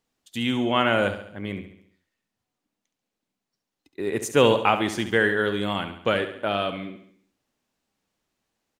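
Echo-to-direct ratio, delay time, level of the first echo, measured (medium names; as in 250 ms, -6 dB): -9.0 dB, 69 ms, -10.5 dB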